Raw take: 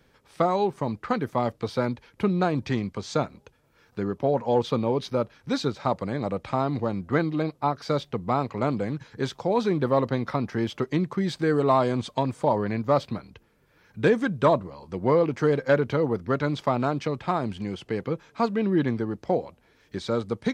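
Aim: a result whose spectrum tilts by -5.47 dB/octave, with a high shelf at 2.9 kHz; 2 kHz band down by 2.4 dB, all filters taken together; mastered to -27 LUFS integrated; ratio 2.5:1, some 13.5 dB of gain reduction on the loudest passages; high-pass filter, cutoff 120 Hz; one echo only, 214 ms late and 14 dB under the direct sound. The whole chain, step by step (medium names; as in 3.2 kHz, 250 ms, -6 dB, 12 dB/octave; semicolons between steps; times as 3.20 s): high-pass 120 Hz; peaking EQ 2 kHz -5 dB; treble shelf 2.9 kHz +5 dB; compression 2.5:1, threshold -37 dBFS; delay 214 ms -14 dB; trim +10 dB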